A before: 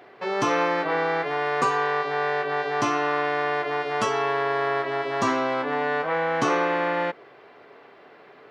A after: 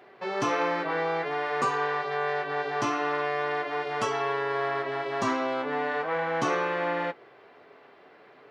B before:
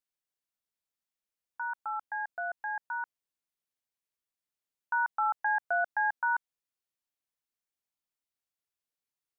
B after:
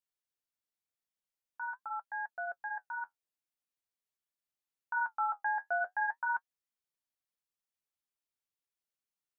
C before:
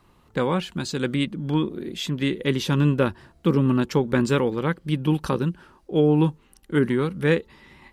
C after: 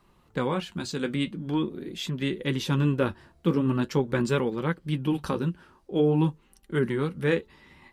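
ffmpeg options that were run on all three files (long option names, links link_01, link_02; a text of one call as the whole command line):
ffmpeg -i in.wav -af "flanger=delay=5:depth=6.9:regen=-50:speed=0.45:shape=sinusoidal" out.wav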